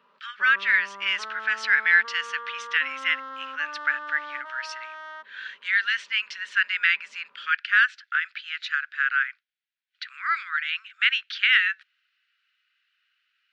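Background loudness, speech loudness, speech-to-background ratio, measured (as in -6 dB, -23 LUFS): -38.0 LUFS, -24.0 LUFS, 14.0 dB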